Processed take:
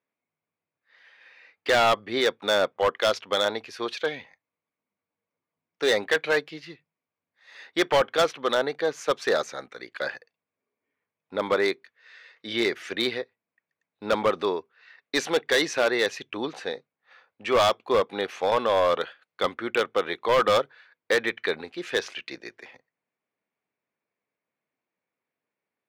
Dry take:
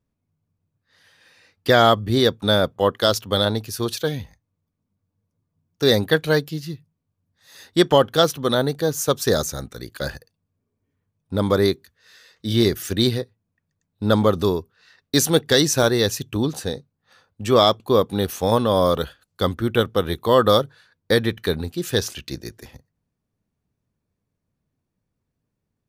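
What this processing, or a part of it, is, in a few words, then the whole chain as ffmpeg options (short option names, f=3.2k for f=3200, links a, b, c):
megaphone: -af "highpass=500,lowpass=3k,equalizer=f=2.2k:t=o:w=0.49:g=8.5,asoftclip=type=hard:threshold=-15.5dB"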